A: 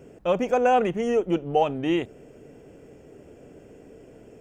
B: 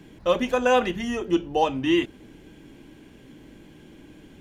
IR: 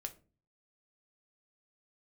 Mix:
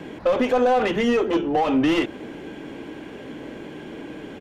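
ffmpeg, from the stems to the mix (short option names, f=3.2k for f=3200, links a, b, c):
-filter_complex "[0:a]equalizer=f=660:t=o:w=2.2:g=8,volume=-2.5dB[a];[1:a]asplit=2[b][c];[c]highpass=f=720:p=1,volume=25dB,asoftclip=type=tanh:threshold=-9dB[d];[b][d]amix=inputs=2:normalize=0,lowpass=f=1.1k:p=1,volume=-6dB,adelay=0.5,volume=0.5dB[e];[a][e]amix=inputs=2:normalize=0,alimiter=limit=-12dB:level=0:latency=1:release=117"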